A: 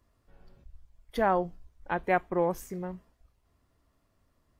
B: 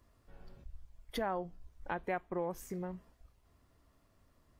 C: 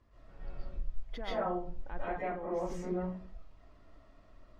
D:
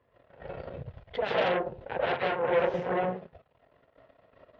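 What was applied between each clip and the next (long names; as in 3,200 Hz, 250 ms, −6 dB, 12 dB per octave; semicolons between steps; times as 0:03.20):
downward compressor 2.5 to 1, threshold −41 dBFS, peak gain reduction 13.5 dB; level +2 dB
brickwall limiter −34.5 dBFS, peak gain reduction 11.5 dB; high-frequency loss of the air 140 metres; convolution reverb RT60 0.40 s, pre-delay 95 ms, DRR −9 dB
harmonic generator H 8 −8 dB, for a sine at −22.5 dBFS; loudspeaker in its box 160–3,200 Hz, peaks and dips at 210 Hz −9 dB, 310 Hz −9 dB, 490 Hz +7 dB, 1,200 Hz −7 dB, 2,300 Hz −3 dB; level +5 dB; AAC 48 kbit/s 44,100 Hz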